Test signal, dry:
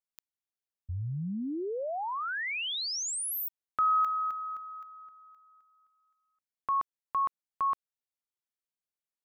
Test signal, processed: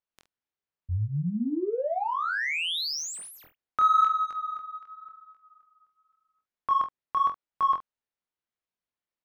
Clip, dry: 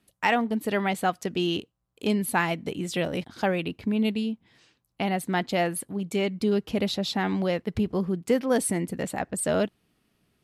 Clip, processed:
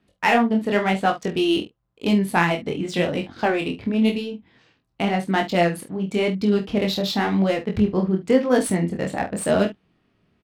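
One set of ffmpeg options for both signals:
ffmpeg -i in.wav -filter_complex "[0:a]adynamicsmooth=sensitivity=6:basefreq=3700,flanger=delay=20:depth=7.2:speed=0.93,asplit=2[link_01][link_02];[link_02]adelay=47,volume=-11.5dB[link_03];[link_01][link_03]amix=inputs=2:normalize=0,volume=8dB" out.wav

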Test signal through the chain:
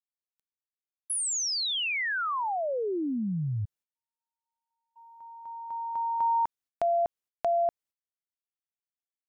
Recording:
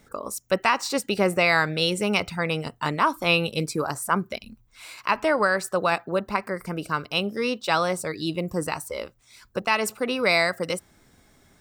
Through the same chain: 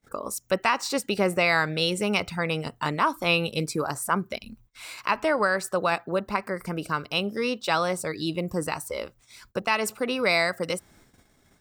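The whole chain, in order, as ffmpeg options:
ffmpeg -i in.wav -filter_complex "[0:a]agate=range=-27dB:threshold=-56dB:ratio=16:detection=peak,asplit=2[link_01][link_02];[link_02]acompressor=threshold=-33dB:ratio=6,volume=-2.5dB[link_03];[link_01][link_03]amix=inputs=2:normalize=0,volume=-3dB" out.wav

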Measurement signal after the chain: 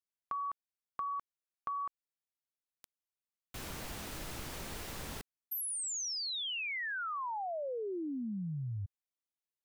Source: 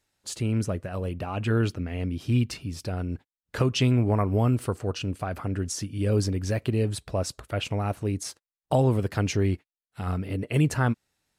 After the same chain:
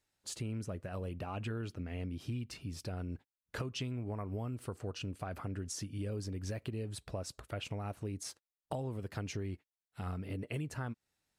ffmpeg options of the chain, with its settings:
ffmpeg -i in.wav -af "acompressor=threshold=-29dB:ratio=6,volume=-7dB" out.wav

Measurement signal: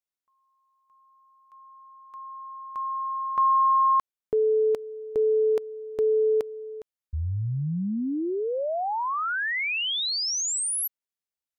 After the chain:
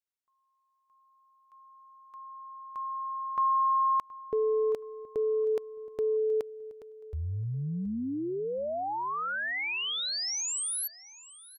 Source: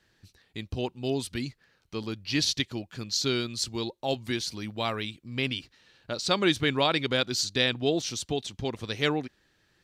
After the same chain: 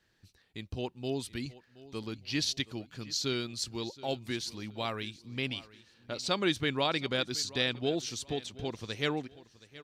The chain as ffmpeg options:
ffmpeg -i in.wav -af "aecho=1:1:723|1446|2169:0.112|0.0348|0.0108,volume=-5dB" out.wav

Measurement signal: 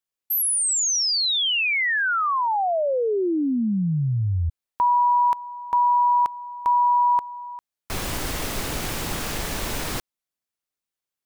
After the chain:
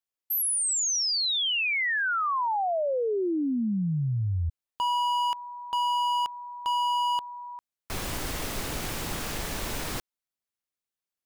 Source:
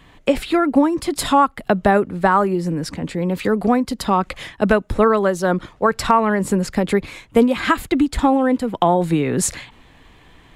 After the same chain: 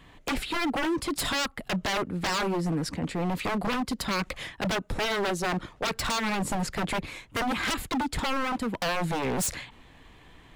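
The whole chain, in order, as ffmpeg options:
ffmpeg -i in.wav -af "aeval=exprs='0.126*(abs(mod(val(0)/0.126+3,4)-2)-1)':channel_layout=same,volume=-4.5dB" out.wav

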